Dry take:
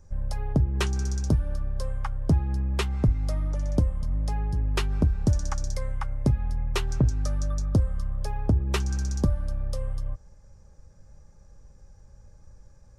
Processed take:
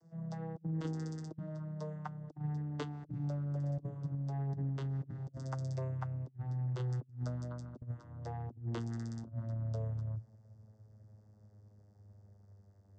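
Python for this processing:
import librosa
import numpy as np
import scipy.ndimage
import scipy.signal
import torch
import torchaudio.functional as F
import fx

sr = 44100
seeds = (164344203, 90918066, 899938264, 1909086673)

y = fx.vocoder_glide(x, sr, note=52, semitones=-9)
y = fx.peak_eq(y, sr, hz=2400.0, db=-11.0, octaves=0.29)
y = fx.hum_notches(y, sr, base_hz=60, count=5)
y = fx.over_compress(y, sr, threshold_db=-37.0, ratio=-0.5)
y = y * 10.0 ** (-1.5 / 20.0)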